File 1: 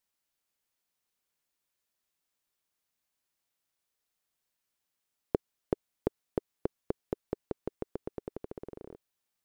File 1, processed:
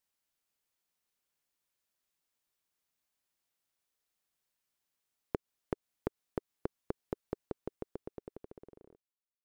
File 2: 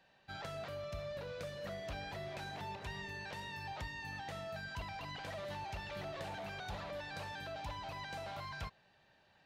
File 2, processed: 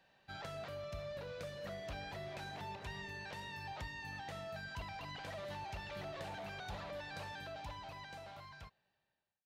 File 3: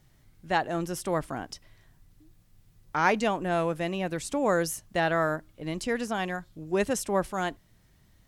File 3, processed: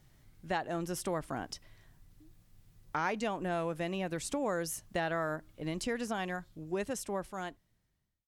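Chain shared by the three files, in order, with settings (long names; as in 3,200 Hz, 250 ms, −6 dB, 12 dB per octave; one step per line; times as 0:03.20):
fade-out on the ending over 2.18 s
downward compressor 3 to 1, threshold −30 dBFS
level −1.5 dB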